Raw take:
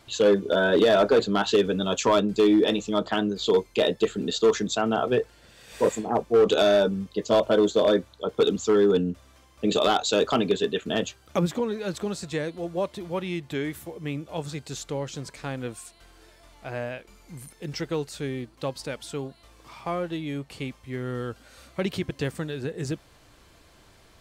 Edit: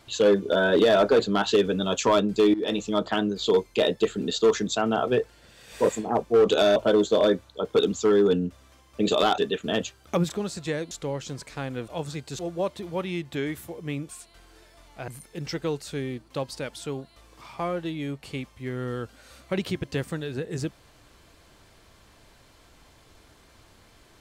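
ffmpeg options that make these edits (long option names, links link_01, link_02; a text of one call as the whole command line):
ffmpeg -i in.wav -filter_complex "[0:a]asplit=10[link_01][link_02][link_03][link_04][link_05][link_06][link_07][link_08][link_09][link_10];[link_01]atrim=end=2.54,asetpts=PTS-STARTPTS,afade=type=out:start_time=2.536:duration=0.004:curve=hsin:silence=0.133352[link_11];[link_02]atrim=start=2.54:end=6.762,asetpts=PTS-STARTPTS,afade=type=in:duration=0.25:silence=0.133352[link_12];[link_03]atrim=start=7.398:end=10.022[link_13];[link_04]atrim=start=10.598:end=11.522[link_14];[link_05]atrim=start=11.958:end=12.572[link_15];[link_06]atrim=start=14.778:end=15.752[link_16];[link_07]atrim=start=14.268:end=14.782[link_17];[link_08]atrim=start=12.568:end=14.272[link_18];[link_09]atrim=start=15.748:end=16.742[link_19];[link_10]atrim=start=17.348[link_20];[link_11][link_12]concat=n=2:v=0:a=1[link_21];[link_21][link_13]acrossfade=duration=0.004:curve1=hsin:curve2=hsin[link_22];[link_22][link_14]acrossfade=duration=0.004:curve1=hsin:curve2=hsin[link_23];[link_23][link_15]acrossfade=duration=0.004:curve1=hsin:curve2=hsin[link_24];[link_24][link_16]acrossfade=duration=0.004:curve1=hsin:curve2=hsin[link_25];[link_25][link_17]acrossfade=duration=0.004:curve1=hsin:curve2=hsin[link_26];[link_26][link_18]acrossfade=duration=0.004:curve1=hsin:curve2=hsin[link_27];[link_27][link_19]acrossfade=duration=0.004:curve1=hsin:curve2=hsin[link_28];[link_28][link_20]acrossfade=duration=0.004:curve1=hsin:curve2=hsin" out.wav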